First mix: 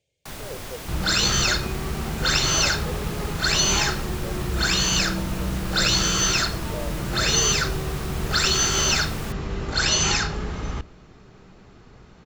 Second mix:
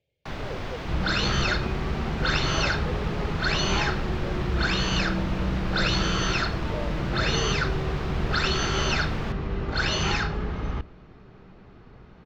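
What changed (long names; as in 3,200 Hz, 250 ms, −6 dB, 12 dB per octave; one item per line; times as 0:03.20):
first sound +4.5 dB
master: add high-frequency loss of the air 230 metres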